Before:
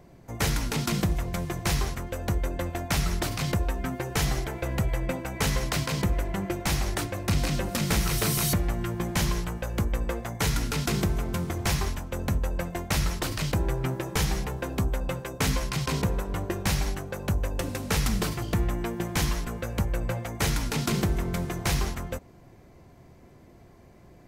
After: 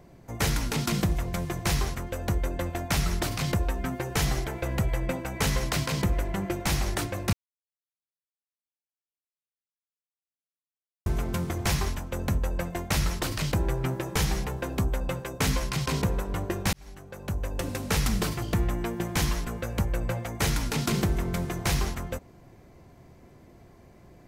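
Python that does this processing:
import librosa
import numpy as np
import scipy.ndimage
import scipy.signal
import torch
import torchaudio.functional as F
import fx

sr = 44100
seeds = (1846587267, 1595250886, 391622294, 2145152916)

y = fx.edit(x, sr, fx.silence(start_s=7.33, length_s=3.73),
    fx.fade_in_span(start_s=16.73, length_s=0.99), tone=tone)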